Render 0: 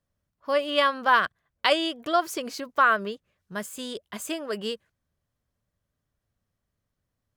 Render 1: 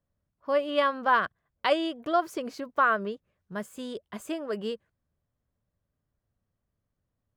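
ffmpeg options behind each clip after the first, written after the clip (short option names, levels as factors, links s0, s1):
-af "highshelf=f=2000:g=-11.5"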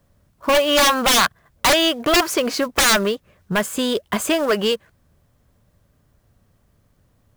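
-filter_complex "[0:a]acrossover=split=680[s0][s1];[s0]acompressor=threshold=0.00891:ratio=6[s2];[s1]acrusher=bits=3:mode=log:mix=0:aa=0.000001[s3];[s2][s3]amix=inputs=2:normalize=0,aeval=exprs='0.282*sin(PI/2*7.08*val(0)/0.282)':c=same"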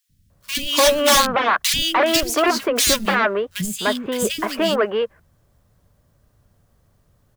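-filter_complex "[0:a]acrossover=split=260|2400[s0][s1][s2];[s0]adelay=90[s3];[s1]adelay=300[s4];[s3][s4][s2]amix=inputs=3:normalize=0,volume=1.12"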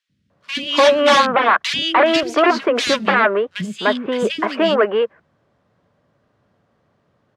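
-af "highpass=200,lowpass=3000,volume=1.58"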